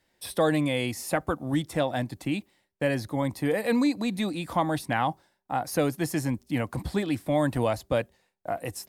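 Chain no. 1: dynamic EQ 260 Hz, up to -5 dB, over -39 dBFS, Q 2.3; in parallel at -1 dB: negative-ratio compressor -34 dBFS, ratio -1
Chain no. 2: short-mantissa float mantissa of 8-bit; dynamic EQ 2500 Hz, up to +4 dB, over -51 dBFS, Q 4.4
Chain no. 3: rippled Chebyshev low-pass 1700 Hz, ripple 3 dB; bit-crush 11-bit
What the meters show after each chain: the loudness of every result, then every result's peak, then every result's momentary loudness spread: -26.5, -28.0, -30.0 LUFS; -10.0, -10.5, -12.5 dBFS; 5, 8, 9 LU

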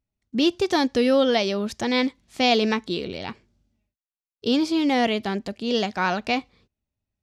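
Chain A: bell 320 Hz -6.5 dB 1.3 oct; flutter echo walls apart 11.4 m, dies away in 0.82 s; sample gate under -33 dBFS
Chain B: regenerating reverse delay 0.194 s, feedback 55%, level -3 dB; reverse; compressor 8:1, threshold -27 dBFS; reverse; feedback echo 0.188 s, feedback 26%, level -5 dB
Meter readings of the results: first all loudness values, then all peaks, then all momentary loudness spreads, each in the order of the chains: -24.0, -29.5 LUFS; -7.5, -14.5 dBFS; 13, 7 LU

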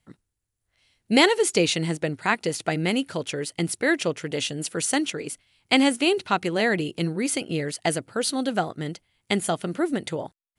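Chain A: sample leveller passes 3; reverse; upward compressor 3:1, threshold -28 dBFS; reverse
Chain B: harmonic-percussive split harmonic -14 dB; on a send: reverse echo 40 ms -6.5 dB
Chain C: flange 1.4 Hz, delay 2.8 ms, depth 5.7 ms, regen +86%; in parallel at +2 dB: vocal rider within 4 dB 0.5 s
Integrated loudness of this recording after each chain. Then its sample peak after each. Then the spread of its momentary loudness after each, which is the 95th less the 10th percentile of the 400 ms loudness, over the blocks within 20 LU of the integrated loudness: -15.0, -26.5, -22.0 LUFS; -2.5, -3.5, -2.0 dBFS; 8, 11, 8 LU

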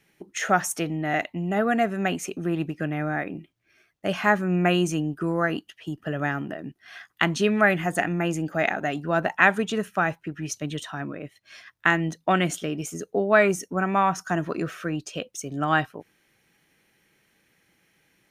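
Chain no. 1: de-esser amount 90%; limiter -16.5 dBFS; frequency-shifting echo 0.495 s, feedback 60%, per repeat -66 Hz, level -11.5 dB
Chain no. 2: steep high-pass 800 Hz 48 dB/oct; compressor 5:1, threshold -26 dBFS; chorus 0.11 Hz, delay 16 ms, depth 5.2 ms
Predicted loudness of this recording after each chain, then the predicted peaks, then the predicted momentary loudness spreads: -28.5, -36.5 LUFS; -14.5, -12.0 dBFS; 13, 13 LU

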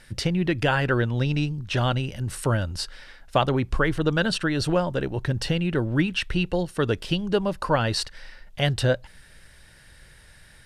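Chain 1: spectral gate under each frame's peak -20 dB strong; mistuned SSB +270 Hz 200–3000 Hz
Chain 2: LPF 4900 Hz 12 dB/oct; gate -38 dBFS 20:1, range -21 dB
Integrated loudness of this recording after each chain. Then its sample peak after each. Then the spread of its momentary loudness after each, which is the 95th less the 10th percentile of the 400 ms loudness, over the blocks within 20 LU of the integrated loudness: -27.0, -25.0 LUFS; -7.5, -8.0 dBFS; 8, 6 LU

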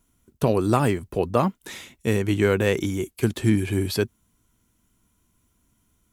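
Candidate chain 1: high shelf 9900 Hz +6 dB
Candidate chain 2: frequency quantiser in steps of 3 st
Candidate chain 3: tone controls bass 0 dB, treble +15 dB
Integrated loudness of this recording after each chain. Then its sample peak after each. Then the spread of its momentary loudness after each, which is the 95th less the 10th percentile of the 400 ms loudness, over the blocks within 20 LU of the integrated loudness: -23.5, -22.5, -22.5 LUFS; -4.5, -7.0, -3.0 dBFS; 8, 7, 7 LU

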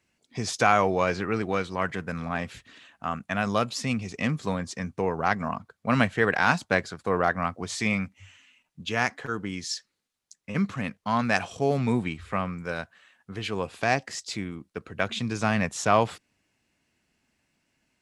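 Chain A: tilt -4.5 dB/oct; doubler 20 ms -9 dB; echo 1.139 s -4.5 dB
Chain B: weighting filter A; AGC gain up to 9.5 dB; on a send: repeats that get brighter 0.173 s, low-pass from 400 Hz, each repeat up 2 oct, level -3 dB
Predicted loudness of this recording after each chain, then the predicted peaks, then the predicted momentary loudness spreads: -20.0, -21.5 LUFS; -2.5, -1.0 dBFS; 9, 11 LU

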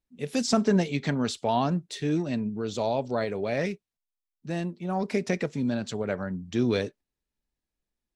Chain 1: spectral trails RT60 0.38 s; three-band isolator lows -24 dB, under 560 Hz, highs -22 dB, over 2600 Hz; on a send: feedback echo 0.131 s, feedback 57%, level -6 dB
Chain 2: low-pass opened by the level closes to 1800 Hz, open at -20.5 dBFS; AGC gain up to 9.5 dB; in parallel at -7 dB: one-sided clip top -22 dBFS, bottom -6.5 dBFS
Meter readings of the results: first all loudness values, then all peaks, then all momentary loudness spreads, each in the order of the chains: -34.5, -17.5 LUFS; -16.0, -1.0 dBFS; 13, 6 LU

